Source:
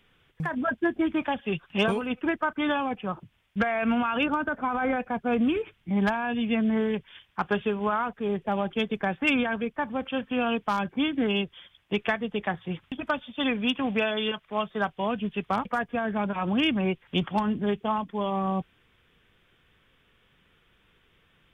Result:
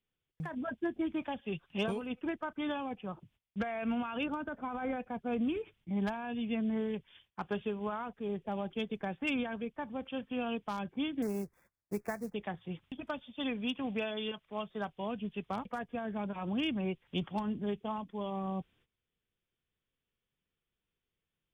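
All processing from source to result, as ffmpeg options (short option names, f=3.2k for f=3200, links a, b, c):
-filter_complex "[0:a]asettb=1/sr,asplit=3[a][b][c];[a]atrim=end=11.224[d];[b]atrim=start=11.22:end=12.34,asetpts=PTS-STARTPTS,afade=t=in:d=0.004:c=qsin,afade=t=out:st=1.116:d=0.004:c=qsin,acrusher=bits=4:mode=log:mix=0:aa=0.000001,asuperstop=centerf=3100:order=4:qfactor=0.99[e];[c]atrim=start=12.336[f];[d][e]acrossfade=d=0.004:c1=hsin:c2=qsin[g];[g][f]acrossfade=d=0.004:c1=qsin:c2=hsin,agate=range=-16dB:threshold=-56dB:ratio=16:detection=peak,equalizer=f=1.5k:t=o:w=1.5:g=-6,volume=-8dB"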